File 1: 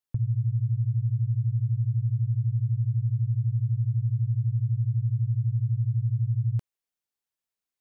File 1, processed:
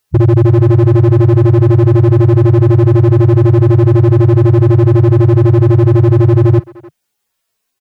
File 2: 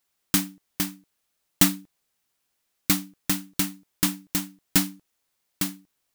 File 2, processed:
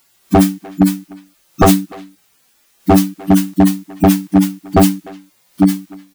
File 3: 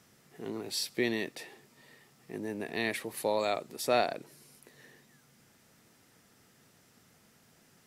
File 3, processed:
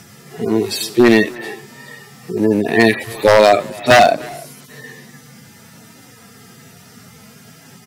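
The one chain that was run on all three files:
harmonic-percussive split with one part muted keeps harmonic
wave folding −25.5 dBFS
far-end echo of a speakerphone 300 ms, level −18 dB
normalise the peak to −1.5 dBFS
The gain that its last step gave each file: +23.5, +23.5, +23.5 decibels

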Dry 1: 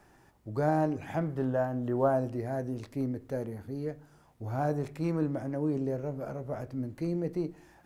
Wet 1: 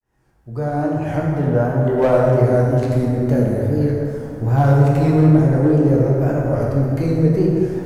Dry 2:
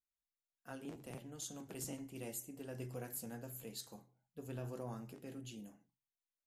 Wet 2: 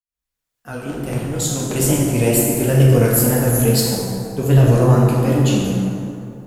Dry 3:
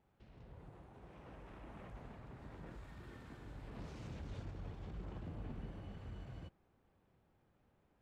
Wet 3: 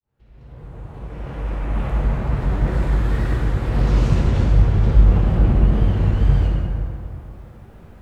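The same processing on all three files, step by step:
fade in at the beginning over 2.37 s
low-shelf EQ 87 Hz +11 dB
in parallel at −0.5 dB: downward compressor, threshold −40 dBFS
on the sum: tape wow and flutter 130 cents
hard clipping −20 dBFS
dense smooth reverb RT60 2.7 s, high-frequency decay 0.5×, DRR −3.5 dB
normalise the peak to −2 dBFS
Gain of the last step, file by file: +8.0, +19.5, +15.5 decibels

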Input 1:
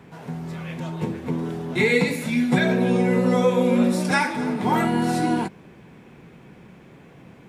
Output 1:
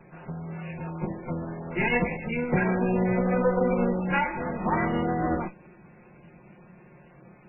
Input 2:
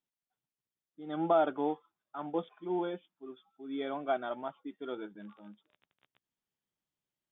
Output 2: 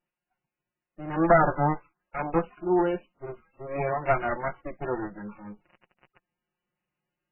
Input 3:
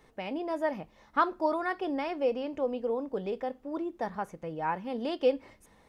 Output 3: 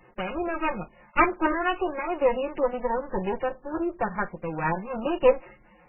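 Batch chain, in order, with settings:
lower of the sound and its delayed copy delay 5.6 ms
MP3 8 kbit/s 12,000 Hz
loudness normalisation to −27 LKFS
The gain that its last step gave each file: −3.0, +10.5, +7.5 decibels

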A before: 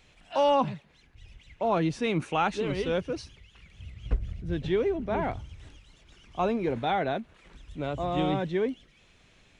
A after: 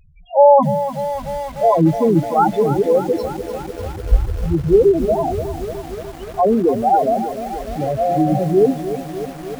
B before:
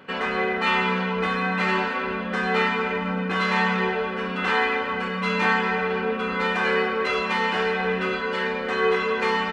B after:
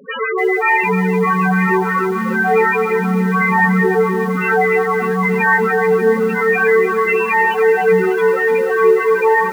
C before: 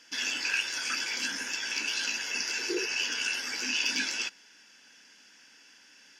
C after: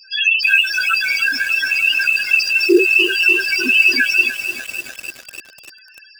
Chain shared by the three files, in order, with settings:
mains-hum notches 60/120/180/240/300/360 Hz
spectral peaks only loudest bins 4
feedback echo at a low word length 297 ms, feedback 80%, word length 8 bits, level −11 dB
normalise the peak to −1.5 dBFS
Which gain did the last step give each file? +15.0, +13.5, +23.0 decibels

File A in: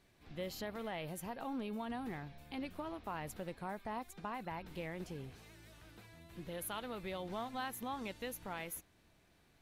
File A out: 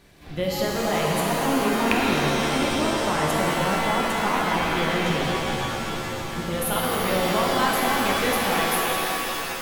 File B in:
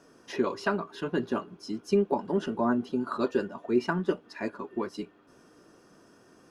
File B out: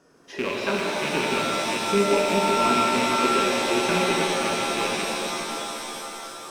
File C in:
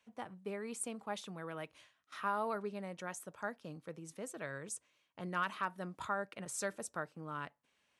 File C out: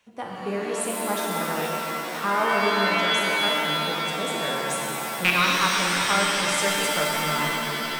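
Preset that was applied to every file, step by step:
loose part that buzzes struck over −41 dBFS, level −17 dBFS
reverb with rising layers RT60 3.7 s, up +7 semitones, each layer −2 dB, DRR −3 dB
loudness normalisation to −23 LKFS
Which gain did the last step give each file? +14.0, −2.0, +9.5 decibels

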